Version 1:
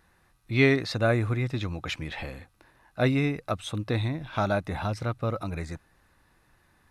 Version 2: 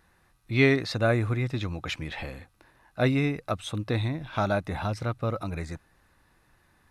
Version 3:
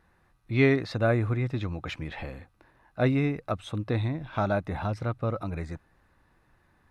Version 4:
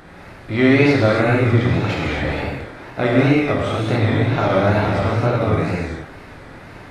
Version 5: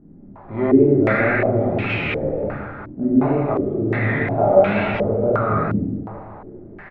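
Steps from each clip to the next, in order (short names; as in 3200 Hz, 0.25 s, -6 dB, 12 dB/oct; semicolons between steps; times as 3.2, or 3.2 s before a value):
nothing audible
high shelf 3100 Hz -10.5 dB
per-bin compression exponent 0.6; non-linear reverb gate 0.3 s flat, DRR -5 dB; wow and flutter 99 cents; gain +2.5 dB
feedback echo 0.187 s, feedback 60%, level -11 dB; shoebox room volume 330 m³, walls furnished, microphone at 1.3 m; stepped low-pass 2.8 Hz 260–2600 Hz; gain -7.5 dB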